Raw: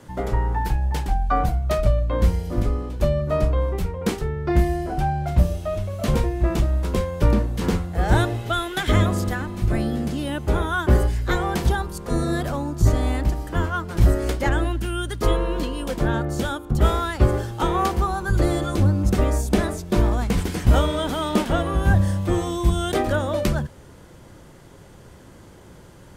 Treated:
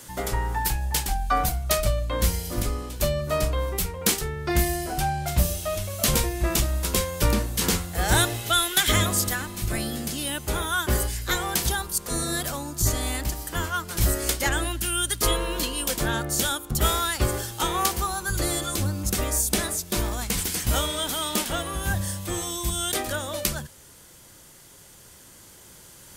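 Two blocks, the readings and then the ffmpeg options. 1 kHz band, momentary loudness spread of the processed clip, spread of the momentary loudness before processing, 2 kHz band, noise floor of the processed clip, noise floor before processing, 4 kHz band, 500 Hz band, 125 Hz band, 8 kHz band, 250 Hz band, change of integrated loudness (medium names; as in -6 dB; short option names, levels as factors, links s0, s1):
-2.5 dB, 6 LU, 6 LU, +1.0 dB, -50 dBFS, -46 dBFS, +6.5 dB, -5.0 dB, -7.0 dB, +13.0 dB, -7.0 dB, -2.5 dB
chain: -af "crystalizer=i=9.5:c=0,dynaudnorm=f=790:g=7:m=3.76,volume=0.531"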